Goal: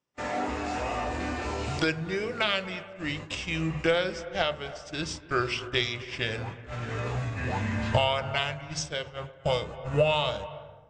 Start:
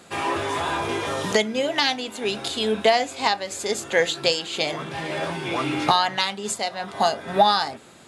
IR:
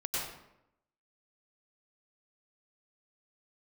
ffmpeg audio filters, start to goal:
-filter_complex "[0:a]bandreject=f=69.54:t=h:w=4,bandreject=f=139.08:t=h:w=4,bandreject=f=208.62:t=h:w=4,bandreject=f=278.16:t=h:w=4,bandreject=f=347.7:t=h:w=4,bandreject=f=417.24:t=h:w=4,bandreject=f=486.78:t=h:w=4,bandreject=f=556.32:t=h:w=4,bandreject=f=625.86:t=h:w=4,agate=range=0.0282:threshold=0.0316:ratio=16:detection=peak,asplit=2[s0][s1];[1:a]atrim=start_sample=2205,lowpass=2900,adelay=79[s2];[s1][s2]afir=irnorm=-1:irlink=0,volume=0.133[s3];[s0][s3]amix=inputs=2:normalize=0,asubboost=boost=10.5:cutoff=120,asetrate=32667,aresample=44100,volume=0.531"

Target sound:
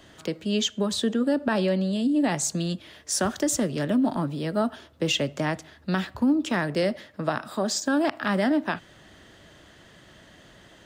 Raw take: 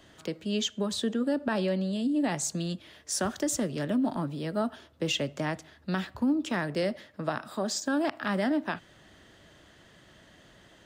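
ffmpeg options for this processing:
-af "volume=1.68"

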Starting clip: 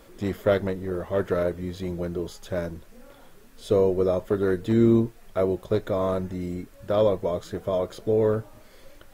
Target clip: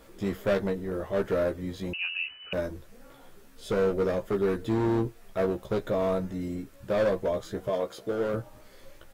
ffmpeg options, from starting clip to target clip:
-filter_complex "[0:a]asettb=1/sr,asplit=3[s0][s1][s2];[s0]atrim=end=7.684[s3];[s1]atrim=start=7.68:end=8.34,asetpts=PTS-STARTPTS,afade=t=in:d=0.004:c=qsin,afade=t=out:st=0.656:d=0.004:c=qsin,highpass=f=260:p=1[s4];[s2]atrim=start=8.336[s5];[s3][s4]acrossfade=d=0.004:c1=hsin:c2=qsin[s6];[s6][s5]acrossfade=d=0.004:c1=qsin:c2=hsin,asoftclip=type=hard:threshold=0.1,asplit=2[s7][s8];[s8]adelay=15,volume=0.596[s9];[s7][s9]amix=inputs=2:normalize=0,asettb=1/sr,asplit=3[s10][s11][s12];[s10]atrim=end=1.934[s13];[s11]atrim=start=1.93:end=2.53,asetpts=PTS-STARTPTS,afade=t=in:d=0.004:c=qsin,afade=t=out:st=0.596:d=0.004:c=qsin,lowpass=f=2600:t=q:w=0.5098,lowpass=f=2600:t=q:w=0.6013,lowpass=f=2600:t=q:w=0.9,lowpass=f=2600:t=q:w=2.563,afreqshift=-3000[s14];[s12]atrim=start=2.526[s15];[s13][s14]acrossfade=d=0.004:c1=hsin:c2=qsin[s16];[s16][s15]acrossfade=d=0.004:c1=qsin:c2=hsin,volume=0.708"

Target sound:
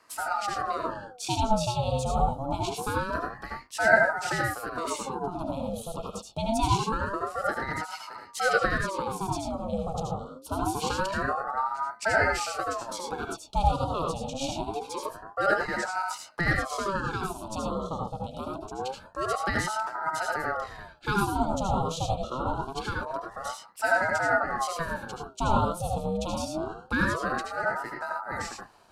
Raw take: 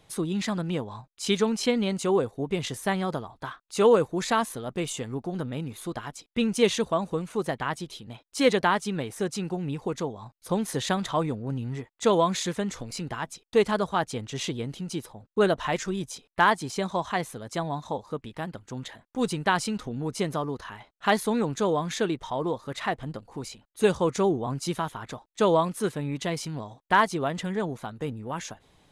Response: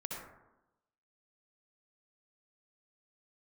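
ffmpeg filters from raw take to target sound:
-filter_complex "[0:a]asuperstop=centerf=1700:order=20:qfactor=0.95,asplit=2[s0][s1];[s1]acompressor=threshold=0.0158:ratio=6,volume=1[s2];[s0][s2]amix=inputs=2:normalize=0,bandreject=f=60:t=h:w=6,bandreject=f=120:t=h:w=6,bandreject=f=180:t=h:w=6,bandreject=f=240:t=h:w=6,bandreject=f=300:t=h:w=6,bandreject=f=360:t=h:w=6,bandreject=f=420:t=h:w=6[s3];[1:a]atrim=start_sample=2205,atrim=end_sample=4410,asetrate=37926,aresample=44100[s4];[s3][s4]afir=irnorm=-1:irlink=0,aeval=exprs='val(0)*sin(2*PI*720*n/s+720*0.55/0.25*sin(2*PI*0.25*n/s))':c=same"

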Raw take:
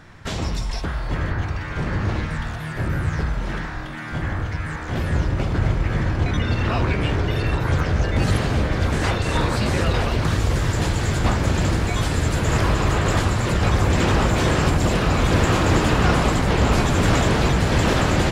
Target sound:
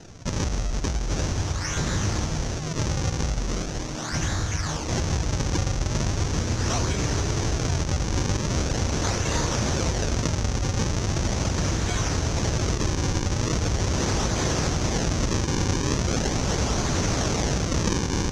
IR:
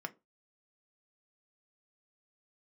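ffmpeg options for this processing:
-filter_complex "[0:a]acrossover=split=190|1400|3100[s0][s1][s2][s3];[s2]alimiter=level_in=1.78:limit=0.0631:level=0:latency=1,volume=0.562[s4];[s0][s1][s4][s3]amix=inputs=4:normalize=0,acompressor=threshold=0.0891:ratio=6,acrusher=samples=38:mix=1:aa=0.000001:lfo=1:lforange=60.8:lforate=0.4,lowpass=f=6100:t=q:w=5.7"

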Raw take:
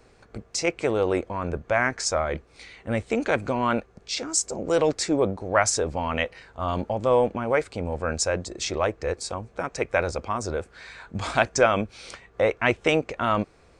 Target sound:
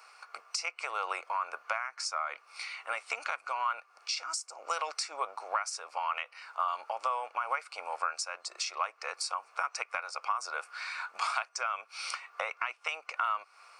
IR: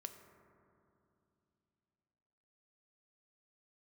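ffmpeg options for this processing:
-af "highpass=f=920:w=0.5412,highpass=f=920:w=1.3066,acompressor=threshold=0.0141:ratio=16,superequalizer=10b=1.58:11b=0.501:13b=0.447:15b=0.501,volume=2.24"

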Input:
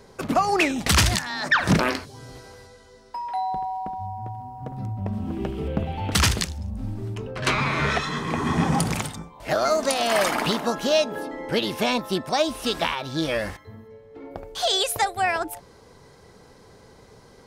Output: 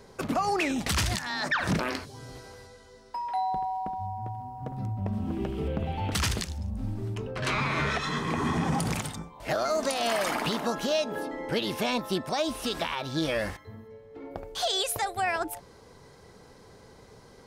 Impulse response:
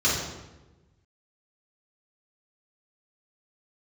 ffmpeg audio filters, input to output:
-af "alimiter=limit=0.15:level=0:latency=1:release=79,volume=0.794"

